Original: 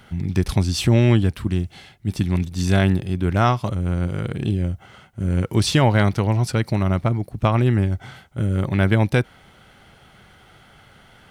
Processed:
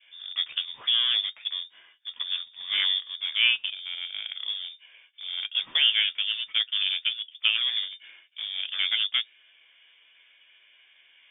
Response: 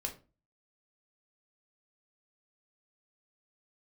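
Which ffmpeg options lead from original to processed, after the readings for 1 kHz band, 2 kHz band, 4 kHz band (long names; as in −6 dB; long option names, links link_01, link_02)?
−22.0 dB, −1.0 dB, +10.5 dB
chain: -filter_complex "[0:a]flanger=delay=9.1:depth=3.6:regen=44:speed=0.76:shape=sinusoidal,acrossover=split=260 2000:gain=0.0794 1 0.0631[link_01][link_02][link_03];[link_01][link_02][link_03]amix=inputs=3:normalize=0,asplit=2[link_04][link_05];[link_05]aeval=exprs='val(0)*gte(abs(val(0)),0.0266)':channel_layout=same,volume=-6.5dB[link_06];[link_04][link_06]amix=inputs=2:normalize=0,lowpass=frequency=3100:width_type=q:width=0.5098,lowpass=frequency=3100:width_type=q:width=0.6013,lowpass=frequency=3100:width_type=q:width=0.9,lowpass=frequency=3100:width_type=q:width=2.563,afreqshift=-3700,adynamicequalizer=threshold=0.00631:dfrequency=930:dqfactor=0.86:tfrequency=930:tqfactor=0.86:attack=5:release=100:ratio=0.375:range=2.5:mode=cutabove:tftype=bell"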